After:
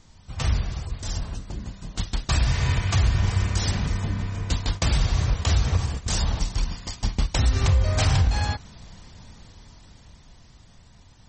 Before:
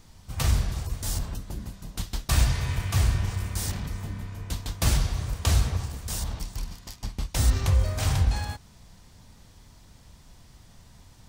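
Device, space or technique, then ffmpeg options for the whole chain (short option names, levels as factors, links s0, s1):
low-bitrate web radio: -filter_complex "[0:a]asplit=3[s0][s1][s2];[s0]afade=t=out:st=4.71:d=0.02[s3];[s1]agate=range=0.316:threshold=0.02:ratio=16:detection=peak,afade=t=in:st=4.71:d=0.02,afade=t=out:st=6.25:d=0.02[s4];[s2]afade=t=in:st=6.25:d=0.02[s5];[s3][s4][s5]amix=inputs=3:normalize=0,dynaudnorm=f=390:g=11:m=5.01,alimiter=limit=0.282:level=0:latency=1:release=179" -ar 48000 -c:a libmp3lame -b:a 32k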